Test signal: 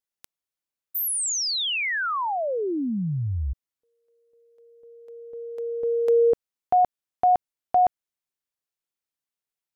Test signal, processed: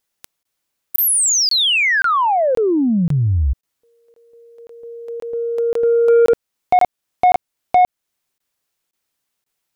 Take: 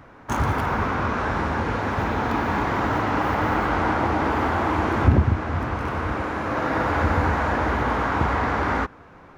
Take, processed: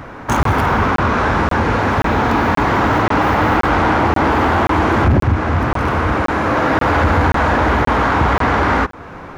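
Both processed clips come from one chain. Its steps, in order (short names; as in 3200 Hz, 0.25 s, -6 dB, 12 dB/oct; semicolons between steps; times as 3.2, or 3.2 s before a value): in parallel at +1 dB: compressor 6:1, threshold -33 dBFS; on the sum: soft clip -15 dBFS; crackling interface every 0.53 s, samples 1024, zero, from 0.43; gain +8 dB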